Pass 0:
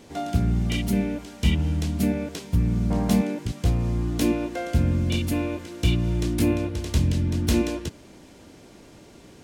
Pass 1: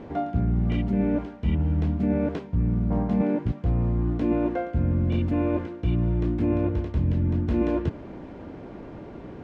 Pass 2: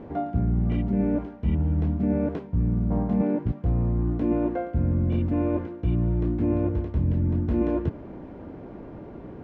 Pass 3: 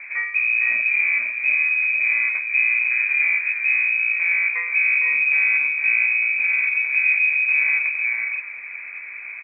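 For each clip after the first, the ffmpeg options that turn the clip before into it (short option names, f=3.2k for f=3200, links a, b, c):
-af "lowpass=1.4k,areverse,acompressor=threshold=-30dB:ratio=6,areverse,volume=9dB"
-af "highshelf=f=2.2k:g=-11"
-filter_complex "[0:a]asplit=2[a][b];[b]asoftclip=type=hard:threshold=-26.5dB,volume=-4dB[c];[a][c]amix=inputs=2:normalize=0,aecho=1:1:459|502:0.422|0.501,lowpass=f=2.2k:t=q:w=0.5098,lowpass=f=2.2k:t=q:w=0.6013,lowpass=f=2.2k:t=q:w=0.9,lowpass=f=2.2k:t=q:w=2.563,afreqshift=-2600"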